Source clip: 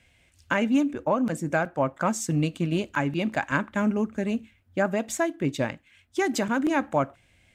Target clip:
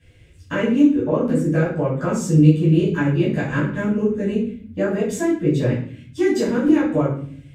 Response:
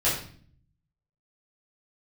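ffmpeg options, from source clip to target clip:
-filter_complex "[0:a]lowshelf=f=550:t=q:w=3:g=6,asplit=2[a][b];[b]acompressor=threshold=-28dB:ratio=6,volume=1.5dB[c];[a][c]amix=inputs=2:normalize=0[d];[1:a]atrim=start_sample=2205[e];[d][e]afir=irnorm=-1:irlink=0,volume=-14.5dB"

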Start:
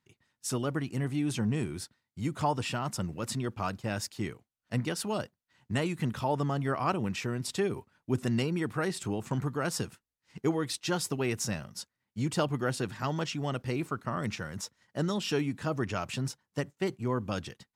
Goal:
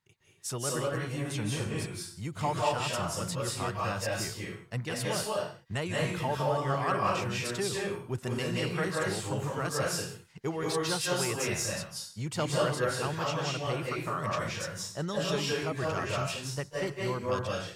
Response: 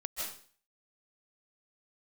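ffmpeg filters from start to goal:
-filter_complex "[1:a]atrim=start_sample=2205,afade=t=out:st=0.39:d=0.01,atrim=end_sample=17640,asetrate=37926,aresample=44100[a];[0:a][a]afir=irnorm=-1:irlink=0,asplit=2[b][c];[c]asoftclip=type=tanh:threshold=-24.5dB,volume=-8dB[d];[b][d]amix=inputs=2:normalize=0,equalizer=f=260:t=o:w=0.62:g=-10.5,volume=-2dB"

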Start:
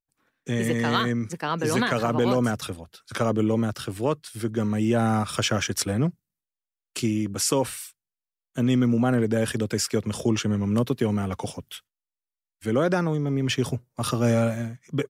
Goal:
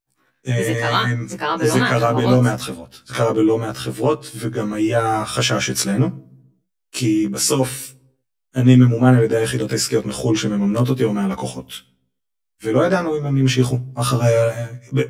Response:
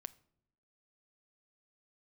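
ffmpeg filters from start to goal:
-filter_complex "[0:a]asplit=2[a][b];[1:a]atrim=start_sample=2205[c];[b][c]afir=irnorm=-1:irlink=0,volume=16.5dB[d];[a][d]amix=inputs=2:normalize=0,afftfilt=real='re*1.73*eq(mod(b,3),0)':imag='im*1.73*eq(mod(b,3),0)':win_size=2048:overlap=0.75,volume=-5dB"

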